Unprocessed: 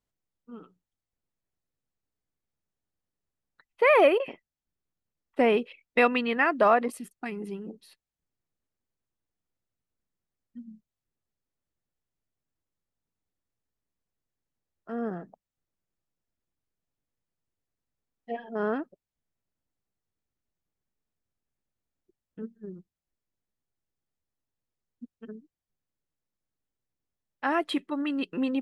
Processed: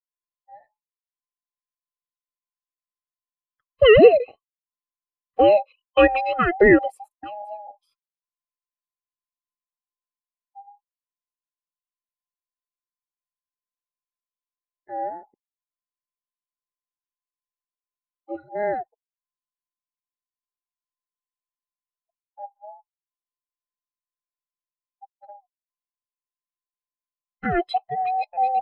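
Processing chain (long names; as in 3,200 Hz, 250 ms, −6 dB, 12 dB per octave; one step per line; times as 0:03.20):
frequency inversion band by band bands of 1,000 Hz
every bin expanded away from the loudest bin 1.5 to 1
level +7.5 dB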